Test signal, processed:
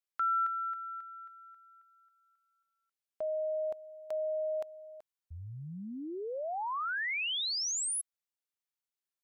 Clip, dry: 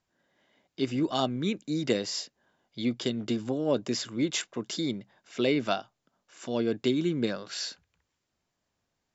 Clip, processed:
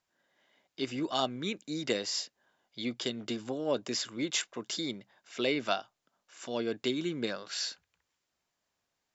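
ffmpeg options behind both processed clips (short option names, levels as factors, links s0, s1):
-af "lowshelf=f=370:g=-10.5"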